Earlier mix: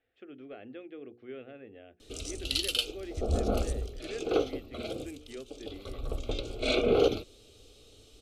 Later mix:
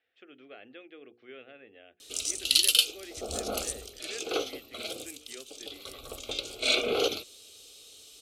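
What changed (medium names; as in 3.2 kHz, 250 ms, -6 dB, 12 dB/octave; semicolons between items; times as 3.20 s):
speech: add distance through air 78 m; master: add tilt EQ +4 dB/octave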